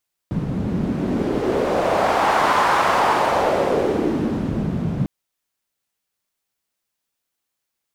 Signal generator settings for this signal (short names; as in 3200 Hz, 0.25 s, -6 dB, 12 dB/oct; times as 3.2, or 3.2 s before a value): wind-like swept noise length 4.75 s, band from 160 Hz, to 1000 Hz, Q 2.1, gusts 1, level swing 6 dB